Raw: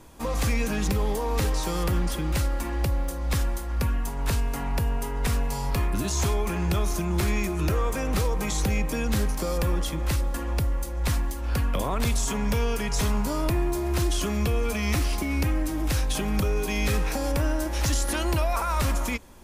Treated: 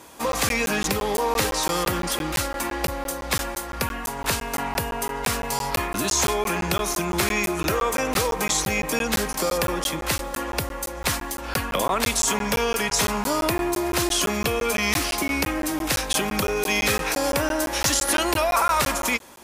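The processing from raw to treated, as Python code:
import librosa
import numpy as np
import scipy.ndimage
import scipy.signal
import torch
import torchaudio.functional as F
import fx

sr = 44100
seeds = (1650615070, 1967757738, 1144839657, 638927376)

y = fx.highpass(x, sr, hz=540.0, slope=6)
y = fx.buffer_crackle(y, sr, first_s=0.32, period_s=0.17, block=512, kind='zero')
y = F.gain(torch.from_numpy(y), 9.0).numpy()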